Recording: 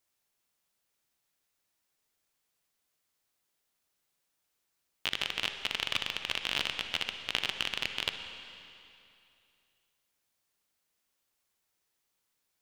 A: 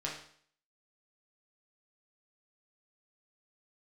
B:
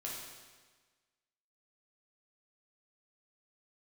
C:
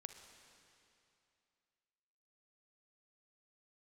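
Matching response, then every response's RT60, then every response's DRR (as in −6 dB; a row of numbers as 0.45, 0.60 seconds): C; 0.55, 1.4, 2.7 seconds; −3.5, −4.5, 6.5 decibels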